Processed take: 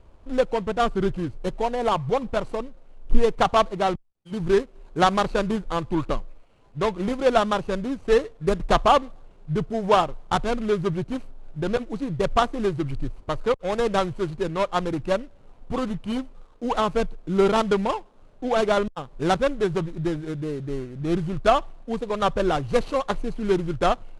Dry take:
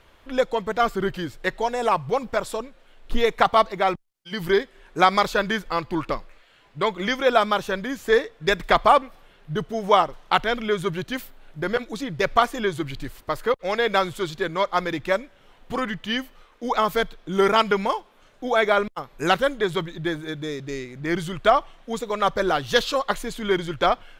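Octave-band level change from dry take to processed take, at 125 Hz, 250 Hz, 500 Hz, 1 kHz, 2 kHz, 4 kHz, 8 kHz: +4.0 dB, +2.5 dB, 0.0 dB, -2.0 dB, -7.0 dB, -5.0 dB, -2.0 dB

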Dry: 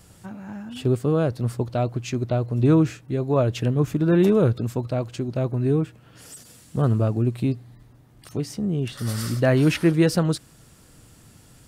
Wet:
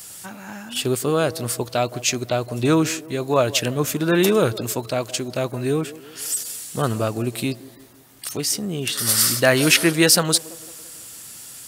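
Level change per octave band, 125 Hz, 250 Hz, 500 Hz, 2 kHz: -5.0 dB, -1.0 dB, +2.5 dB, +10.5 dB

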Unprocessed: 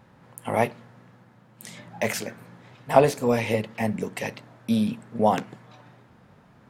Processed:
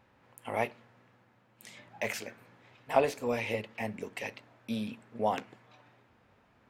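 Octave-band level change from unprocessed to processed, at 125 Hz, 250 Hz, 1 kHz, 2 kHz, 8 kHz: -13.5 dB, -12.0 dB, -8.5 dB, -5.5 dB, -10.0 dB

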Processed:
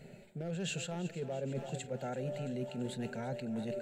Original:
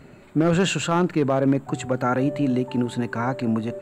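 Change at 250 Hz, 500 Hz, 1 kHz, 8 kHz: -18.0 dB, -14.5 dB, -19.5 dB, -11.5 dB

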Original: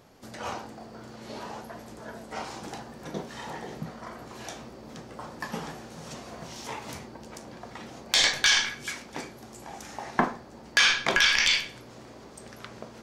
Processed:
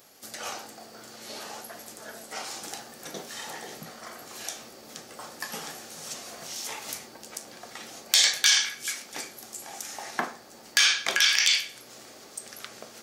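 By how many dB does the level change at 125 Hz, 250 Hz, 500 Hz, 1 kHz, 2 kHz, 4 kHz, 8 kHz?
-11.5 dB, -8.5 dB, -4.5 dB, -4.5 dB, -2.0 dB, +1.5 dB, +5.5 dB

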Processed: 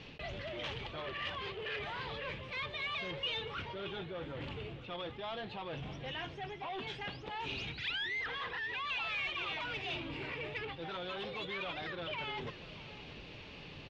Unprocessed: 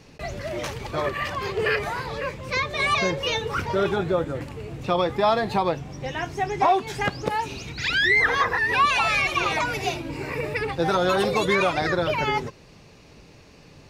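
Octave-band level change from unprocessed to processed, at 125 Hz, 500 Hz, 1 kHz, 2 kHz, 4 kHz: -15.0 dB, -18.5 dB, -19.0 dB, -15.0 dB, -9.5 dB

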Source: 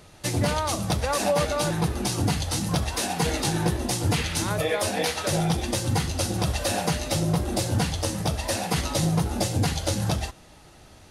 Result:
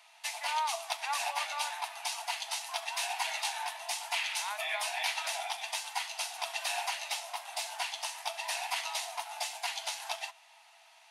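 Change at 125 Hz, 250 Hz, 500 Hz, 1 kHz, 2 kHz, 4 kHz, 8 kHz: under -40 dB, under -40 dB, -17.0 dB, -5.0 dB, -3.0 dB, -4.5 dB, -8.0 dB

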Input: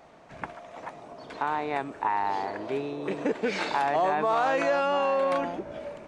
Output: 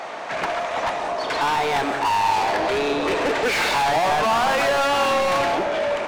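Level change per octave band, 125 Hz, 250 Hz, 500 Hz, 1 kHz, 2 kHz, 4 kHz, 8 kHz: +7.0 dB, +4.5 dB, +6.0 dB, +7.5 dB, +10.5 dB, +15.0 dB, +17.5 dB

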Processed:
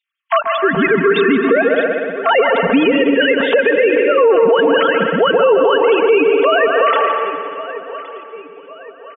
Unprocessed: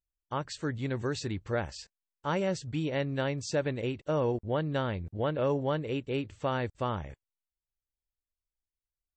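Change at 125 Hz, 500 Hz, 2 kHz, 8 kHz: +0.5 dB, +21.0 dB, +24.5 dB, under -30 dB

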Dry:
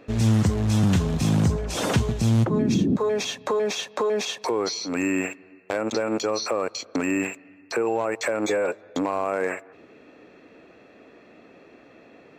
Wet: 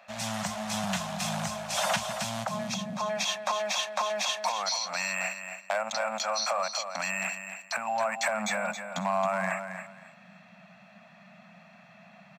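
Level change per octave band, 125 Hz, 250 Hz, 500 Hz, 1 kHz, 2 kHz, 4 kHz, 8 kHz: -18.5 dB, -14.0 dB, -8.0 dB, +1.0 dB, +0.5 dB, +0.5 dB, +0.5 dB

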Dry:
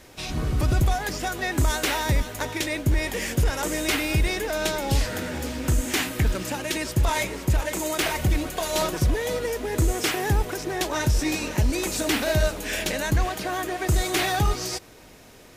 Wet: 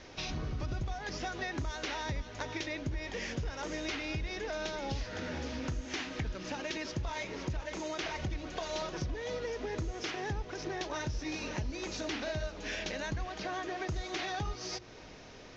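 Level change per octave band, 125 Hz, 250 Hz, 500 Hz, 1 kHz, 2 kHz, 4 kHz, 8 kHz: -14.0 dB, -11.5 dB, -11.0 dB, -11.0 dB, -11.0 dB, -11.0 dB, -16.5 dB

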